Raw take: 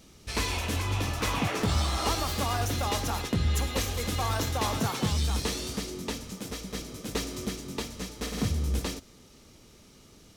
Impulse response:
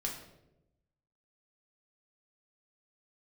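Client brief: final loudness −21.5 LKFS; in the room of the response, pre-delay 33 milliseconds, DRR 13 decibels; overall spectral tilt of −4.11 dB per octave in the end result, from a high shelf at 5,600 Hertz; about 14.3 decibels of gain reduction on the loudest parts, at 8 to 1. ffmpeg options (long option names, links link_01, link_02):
-filter_complex "[0:a]highshelf=frequency=5600:gain=4,acompressor=threshold=-38dB:ratio=8,asplit=2[link_01][link_02];[1:a]atrim=start_sample=2205,adelay=33[link_03];[link_02][link_03]afir=irnorm=-1:irlink=0,volume=-14.5dB[link_04];[link_01][link_04]amix=inputs=2:normalize=0,volume=19.5dB"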